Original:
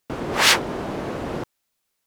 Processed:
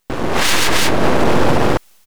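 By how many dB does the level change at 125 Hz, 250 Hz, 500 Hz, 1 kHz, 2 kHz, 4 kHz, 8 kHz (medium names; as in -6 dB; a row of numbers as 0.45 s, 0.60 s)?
+13.0 dB, +11.5 dB, +11.5 dB, +9.0 dB, +4.5 dB, +3.0 dB, +4.5 dB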